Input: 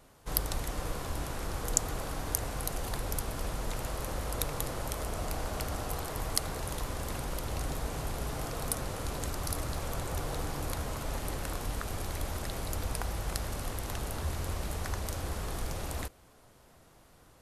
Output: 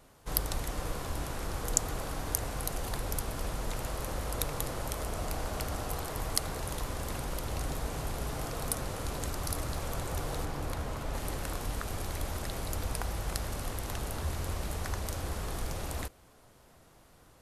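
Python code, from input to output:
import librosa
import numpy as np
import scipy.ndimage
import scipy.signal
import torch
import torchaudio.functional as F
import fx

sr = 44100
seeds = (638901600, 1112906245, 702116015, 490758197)

y = fx.high_shelf(x, sr, hz=4300.0, db=-7.0, at=(10.45, 11.15))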